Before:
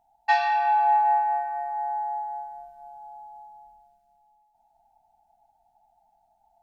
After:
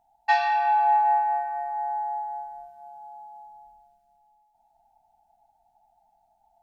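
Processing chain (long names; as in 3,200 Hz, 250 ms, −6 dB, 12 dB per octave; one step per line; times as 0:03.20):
0:02.66–0:03.41: high-pass filter 56 Hz → 120 Hz 24 dB per octave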